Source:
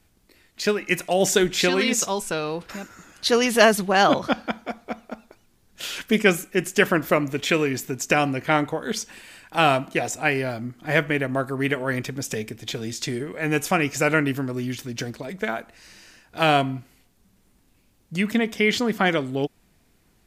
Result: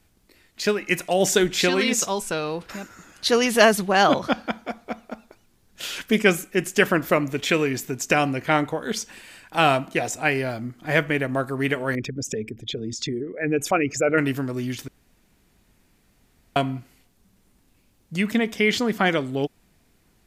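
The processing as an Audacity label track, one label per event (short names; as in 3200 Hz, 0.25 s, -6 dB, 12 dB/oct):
11.950000	14.180000	formant sharpening exponent 2
14.880000	16.560000	room tone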